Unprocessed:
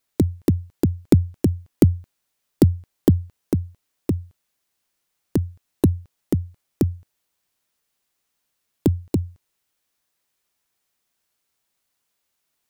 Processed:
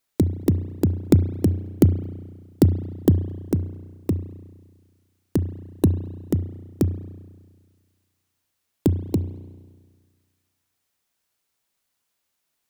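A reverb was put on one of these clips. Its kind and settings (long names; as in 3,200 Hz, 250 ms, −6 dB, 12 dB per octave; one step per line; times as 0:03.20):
spring reverb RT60 1.6 s, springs 33 ms, chirp 45 ms, DRR 12 dB
level −1 dB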